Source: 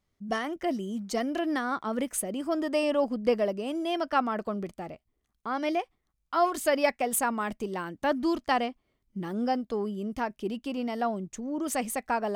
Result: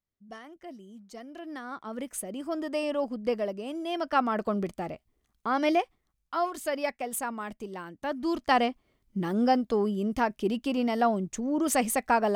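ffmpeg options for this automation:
-af "volume=5.01,afade=t=in:st=1.28:d=1.11:silence=0.281838,afade=t=in:st=3.84:d=0.74:silence=0.421697,afade=t=out:st=5.81:d=0.67:silence=0.334965,afade=t=in:st=8.17:d=0.5:silence=0.316228"

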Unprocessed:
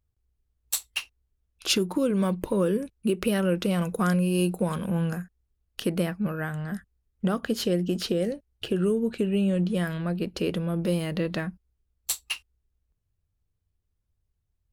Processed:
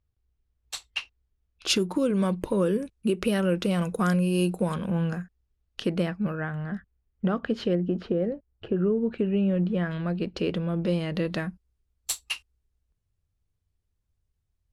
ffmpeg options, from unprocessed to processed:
-af "asetnsamples=n=441:p=0,asendcmd='1.67 lowpass f 9700;4.74 lowpass f 5500;6.35 lowpass f 2700;7.75 lowpass f 1400;8.98 lowpass f 2300;9.91 lowpass f 4800;11.15 lowpass f 11000',lowpass=4600"

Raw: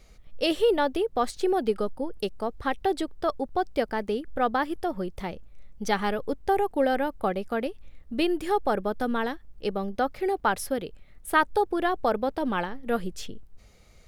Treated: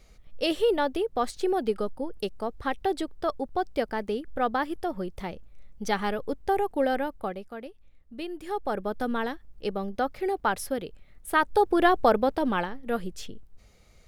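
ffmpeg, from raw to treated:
-af "volume=5.62,afade=t=out:st=6.94:d=0.58:silence=0.334965,afade=t=in:st=8.31:d=0.67:silence=0.334965,afade=t=in:st=11.4:d=0.45:silence=0.446684,afade=t=out:st=11.85:d=0.97:silence=0.421697"

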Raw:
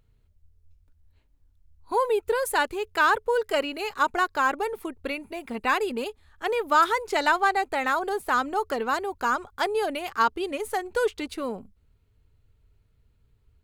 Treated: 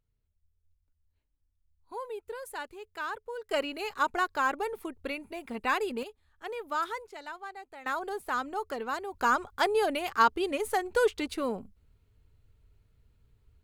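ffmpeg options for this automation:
-af "asetnsamples=n=441:p=0,asendcmd='3.51 volume volume -4.5dB;6.03 volume volume -11.5dB;7.07 volume volume -20dB;7.86 volume volume -7.5dB;9.14 volume volume -0.5dB',volume=0.178"

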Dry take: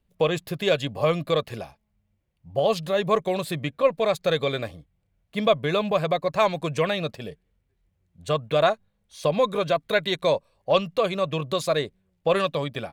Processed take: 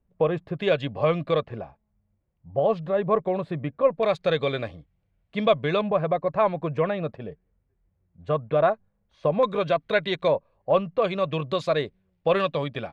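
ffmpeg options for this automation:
-af "asetnsamples=n=441:p=0,asendcmd='0.59 lowpass f 2700;1.45 lowpass f 1400;4.03 lowpass f 3500;5.81 lowpass f 1500;9.43 lowpass f 3300;10.28 lowpass f 1600;11.02 lowpass f 3500',lowpass=1400"

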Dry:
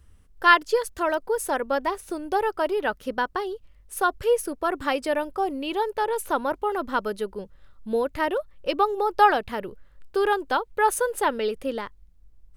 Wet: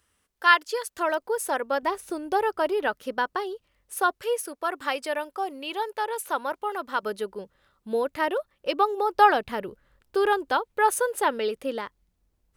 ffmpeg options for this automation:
-af "asetnsamples=n=441:p=0,asendcmd='0.97 highpass f 380;1.83 highpass f 130;2.88 highpass f 300;4.11 highpass f 790;7.03 highpass f 280;9.15 highpass f 93;10.51 highpass f 230',highpass=f=960:p=1"

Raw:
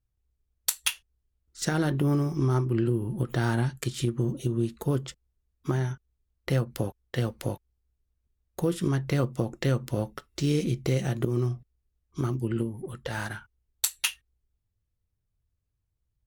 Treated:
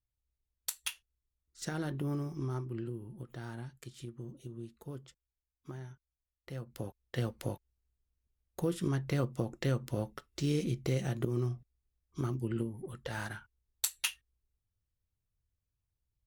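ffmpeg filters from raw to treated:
-af "volume=1.12,afade=t=out:st=2.24:d=1.03:silence=0.446684,afade=t=in:st=6.54:d=0.66:silence=0.266073"

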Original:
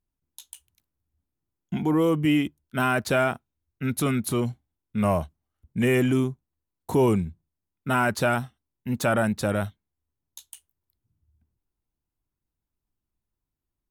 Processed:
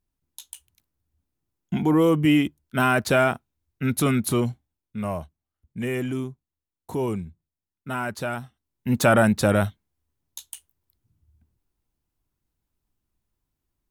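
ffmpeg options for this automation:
-af "volume=5.31,afade=t=out:st=4.34:d=0.69:silence=0.354813,afade=t=in:st=8.41:d=0.54:silence=0.266073"

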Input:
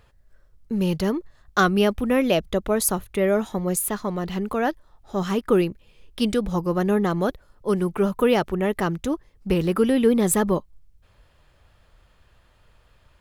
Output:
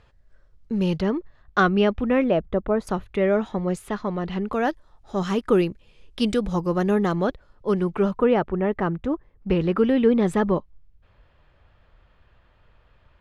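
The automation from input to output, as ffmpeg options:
-af "asetnsamples=n=441:p=0,asendcmd='1 lowpass f 3100;2.24 lowpass f 1500;2.87 lowpass f 3500;4.53 lowpass f 8000;7.16 lowpass f 4600;8.19 lowpass f 1800;9.5 lowpass f 3000',lowpass=5700"

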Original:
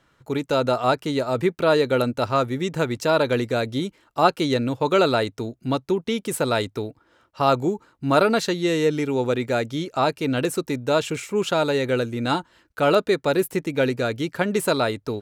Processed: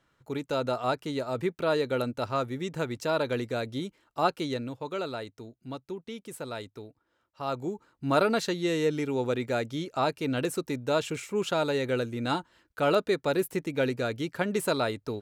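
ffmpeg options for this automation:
-af "volume=1.12,afade=t=out:st=4.31:d=0.57:silence=0.446684,afade=t=in:st=7.41:d=0.64:silence=0.354813"

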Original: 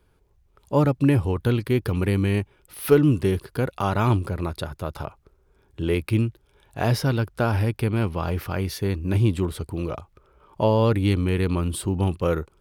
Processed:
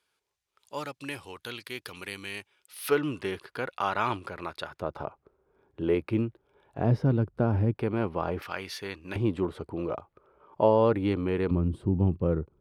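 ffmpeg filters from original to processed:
-af "asetnsamples=n=441:p=0,asendcmd='2.89 bandpass f 1800;4.8 bandpass f 580;6.78 bandpass f 230;7.75 bandpass f 620;8.42 bandpass f 2200;9.16 bandpass f 640;11.51 bandpass f 170',bandpass=f=5000:t=q:w=0.6:csg=0"

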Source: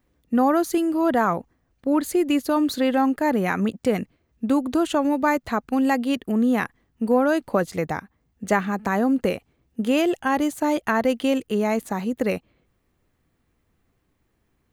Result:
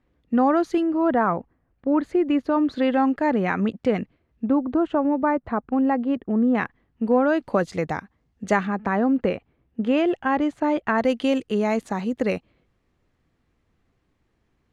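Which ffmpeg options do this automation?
-af "asetnsamples=n=441:p=0,asendcmd='0.83 lowpass f 2000;2.76 lowpass f 3400;4.46 lowpass f 1300;6.55 lowpass f 3100;7.4 lowpass f 6100;8.67 lowpass f 2600;10.98 lowpass f 6100',lowpass=3400"

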